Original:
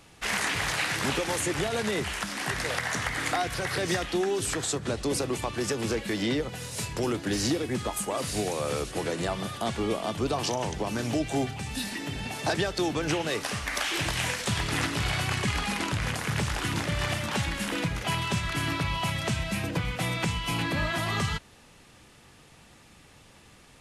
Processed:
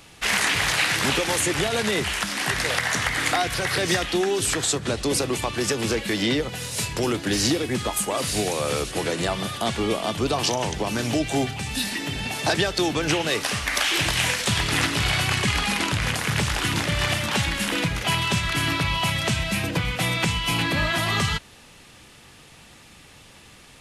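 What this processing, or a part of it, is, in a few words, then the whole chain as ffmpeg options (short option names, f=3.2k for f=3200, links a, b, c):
presence and air boost: -af "equalizer=f=3.2k:t=o:w=1.7:g=4,highshelf=f=11k:g=6.5,volume=4dB"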